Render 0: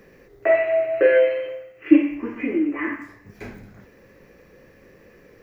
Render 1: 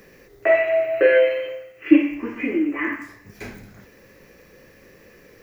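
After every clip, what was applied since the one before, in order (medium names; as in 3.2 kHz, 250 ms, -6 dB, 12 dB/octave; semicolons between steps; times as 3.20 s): treble shelf 2.7 kHz +9.5 dB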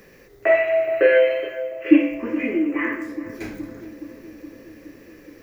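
filtered feedback delay 420 ms, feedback 75%, low-pass 910 Hz, level -12 dB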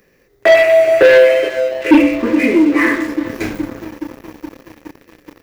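waveshaping leveller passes 3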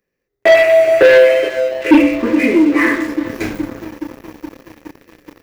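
gate with hold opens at -35 dBFS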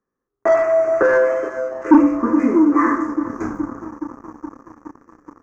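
FFT filter 170 Hz 0 dB, 250 Hz +6 dB, 570 Hz -3 dB, 1.2 kHz +13 dB, 2.7 kHz -23 dB, 3.9 kHz -26 dB, 6.4 kHz 0 dB, 9.9 kHz -23 dB; trim -6 dB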